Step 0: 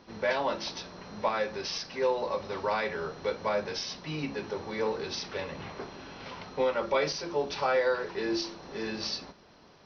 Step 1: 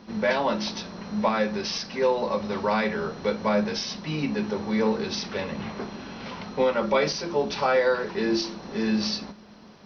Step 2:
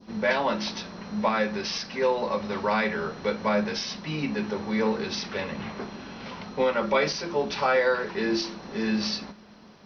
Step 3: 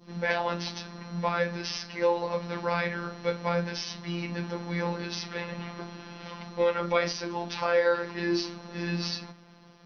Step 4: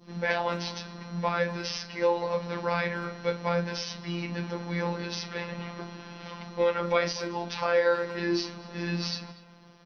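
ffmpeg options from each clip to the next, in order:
-af "equalizer=f=210:w=4.4:g=13.5,volume=4.5dB"
-af "adynamicequalizer=threshold=0.0141:dfrequency=1900:dqfactor=0.78:tfrequency=1900:tqfactor=0.78:attack=5:release=100:ratio=0.375:range=2:mode=boostabove:tftype=bell,volume=-2dB"
-af "afftfilt=real='hypot(re,im)*cos(PI*b)':imag='0':win_size=1024:overlap=0.75"
-filter_complex "[0:a]asplit=2[a][b];[b]adelay=240,highpass=300,lowpass=3.4k,asoftclip=type=hard:threshold=-17.5dB,volume=-16dB[c];[a][c]amix=inputs=2:normalize=0"

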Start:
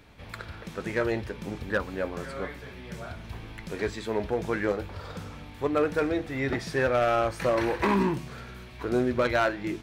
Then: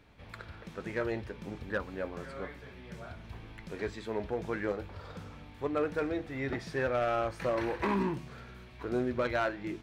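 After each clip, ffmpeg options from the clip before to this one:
-af "highshelf=f=5.9k:g=-7,volume=-6dB"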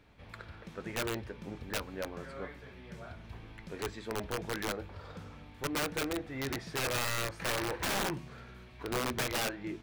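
-af "aeval=exprs='(mod(18.8*val(0)+1,2)-1)/18.8':c=same,volume=-1.5dB"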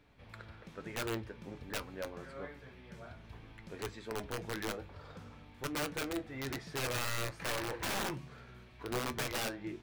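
-af "flanger=delay=6.8:depth=2.4:regen=74:speed=1.2:shape=sinusoidal,volume=1dB"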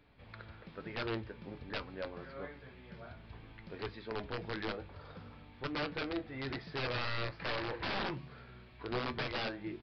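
-af "aresample=11025,aresample=44100"

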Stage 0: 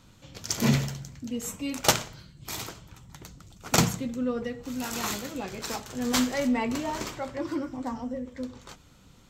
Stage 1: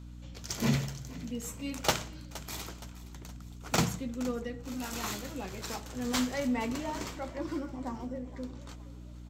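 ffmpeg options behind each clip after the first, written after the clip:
-filter_complex "[0:a]asplit=5[a][b][c][d][e];[b]adelay=468,afreqshift=32,volume=-18dB[f];[c]adelay=936,afreqshift=64,volume=-24.4dB[g];[d]adelay=1404,afreqshift=96,volume=-30.8dB[h];[e]adelay=1872,afreqshift=128,volume=-37.1dB[i];[a][f][g][h][i]amix=inputs=5:normalize=0,acrossover=split=110|5200[j][k][l];[l]asoftclip=type=tanh:threshold=-27.5dB[m];[j][k][m]amix=inputs=3:normalize=0,aeval=exprs='val(0)+0.01*(sin(2*PI*60*n/s)+sin(2*PI*2*60*n/s)/2+sin(2*PI*3*60*n/s)/3+sin(2*PI*4*60*n/s)/4+sin(2*PI*5*60*n/s)/5)':c=same,volume=-5dB"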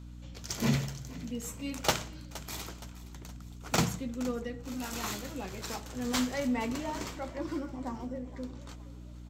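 -af anull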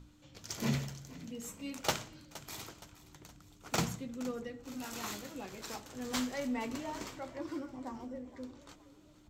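-af "bandreject=f=60:t=h:w=6,bandreject=f=120:t=h:w=6,bandreject=f=180:t=h:w=6,bandreject=f=240:t=h:w=6,volume=-4.5dB"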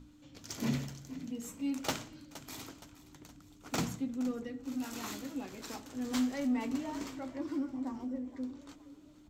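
-filter_complex "[0:a]equalizer=f=270:t=o:w=0.29:g=13,asplit=2[a][b];[b]asoftclip=type=tanh:threshold=-31dB,volume=-5dB[c];[a][c]amix=inputs=2:normalize=0,volume=-5dB"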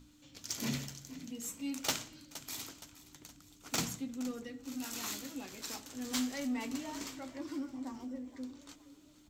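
-af "highshelf=f=2.1k:g=11,volume=-4.5dB"

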